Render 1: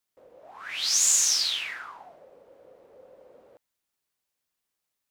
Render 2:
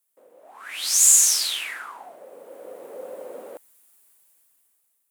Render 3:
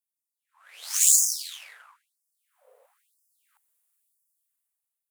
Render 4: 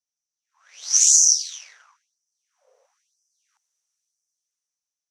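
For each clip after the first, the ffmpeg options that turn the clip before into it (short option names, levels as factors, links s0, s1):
-af "highpass=f=210:w=0.5412,highpass=f=210:w=1.3066,highshelf=f=7100:t=q:w=1.5:g=10,dynaudnorm=f=240:g=9:m=6.31"
-af "asubboost=boost=9.5:cutoff=130,aeval=exprs='0.841*(cos(1*acos(clip(val(0)/0.841,-1,1)))-cos(1*PI/2))+0.211*(cos(2*acos(clip(val(0)/0.841,-1,1)))-cos(2*PI/2))+0.0944*(cos(7*acos(clip(val(0)/0.841,-1,1)))-cos(7*PI/2))+0.0668*(cos(8*acos(clip(val(0)/0.841,-1,1)))-cos(8*PI/2))':c=same,afftfilt=real='re*gte(b*sr/1024,390*pow(4900/390,0.5+0.5*sin(2*PI*1*pts/sr)))':imag='im*gte(b*sr/1024,390*pow(4900/390,0.5+0.5*sin(2*PI*1*pts/sr)))':win_size=1024:overlap=0.75,volume=0.75"
-filter_complex "[0:a]asplit=2[s0][s1];[s1]asoftclip=type=tanh:threshold=0.316,volume=0.631[s2];[s0][s2]amix=inputs=2:normalize=0,lowpass=f=5900:t=q:w=13,volume=0.422"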